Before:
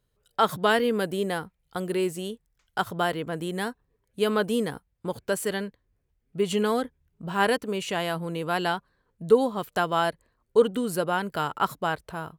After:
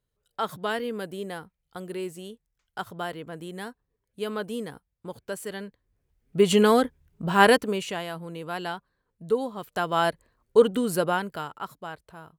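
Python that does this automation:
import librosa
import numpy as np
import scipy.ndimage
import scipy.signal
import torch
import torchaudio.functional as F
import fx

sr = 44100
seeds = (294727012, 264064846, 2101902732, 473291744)

y = fx.gain(x, sr, db=fx.line((5.52, -7.0), (6.39, 6.0), (7.55, 6.0), (8.06, -6.0), (9.59, -6.0), (10.07, 2.0), (11.09, 2.0), (11.59, -10.5)))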